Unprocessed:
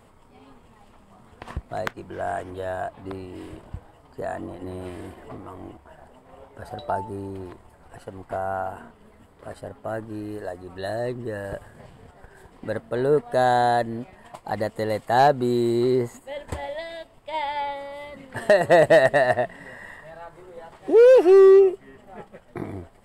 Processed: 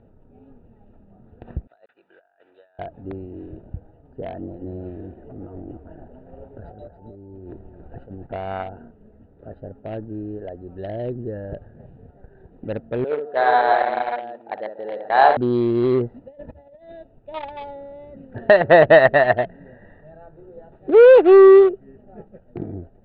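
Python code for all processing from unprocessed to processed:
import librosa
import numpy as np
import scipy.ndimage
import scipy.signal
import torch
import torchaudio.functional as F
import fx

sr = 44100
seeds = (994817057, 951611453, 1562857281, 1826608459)

y = fx.chain(x, sr, fx.bessel_highpass(hz=2300.0, order=2),
    fx.over_compress(threshold_db=-50.0, ratio=-0.5), at=(1.67, 2.79))
y = fx.chain(y, sr, fx.over_compress(threshold_db=-41.0, ratio=-1.0),
    fx.echo_single(ms=279, db=-10.5), at=(5.31, 8.27))
y = fx.chain(y, sr, fx.highpass(hz=620.0, slope=12),
    fx.high_shelf(hz=5400.0, db=-6.5),
    fx.echo_multitap(ms=(61, 142, 287, 374, 536), db=(-5.0, -13.5, -13.0, -6.0, -7.5)), at=(13.04, 15.37))
y = fx.chain(y, sr, fx.notch(hz=1600.0, q=12.0),
    fx.over_compress(threshold_db=-39.0, ratio=-0.5),
    fx.notch_comb(f0_hz=380.0), at=(16.16, 16.92))
y = fx.wiener(y, sr, points=41)
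y = scipy.signal.sosfilt(scipy.signal.butter(8, 4000.0, 'lowpass', fs=sr, output='sos'), y)
y = fx.dynamic_eq(y, sr, hz=1300.0, q=1.1, threshold_db=-35.0, ratio=4.0, max_db=4)
y = F.gain(torch.from_numpy(y), 3.5).numpy()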